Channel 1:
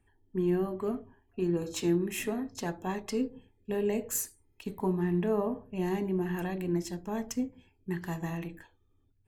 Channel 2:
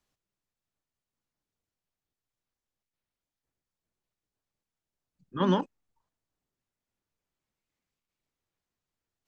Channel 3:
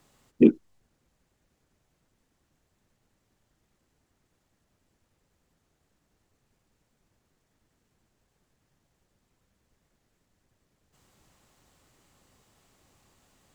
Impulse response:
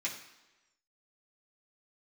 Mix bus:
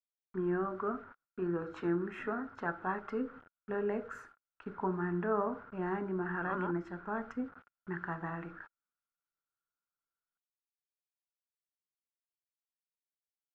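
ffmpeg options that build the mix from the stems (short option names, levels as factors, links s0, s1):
-filter_complex "[0:a]acrusher=bits=8:mix=0:aa=0.000001,volume=0.668[s0];[1:a]adelay=1100,volume=0.168[s1];[s0][s1]amix=inputs=2:normalize=0,lowpass=f=1400:t=q:w=12,lowshelf=f=230:g=-6"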